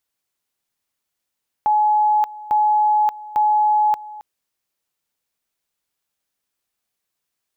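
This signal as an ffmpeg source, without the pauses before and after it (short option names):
-f lavfi -i "aevalsrc='pow(10,(-13-19*gte(mod(t,0.85),0.58))/20)*sin(2*PI*847*t)':d=2.55:s=44100"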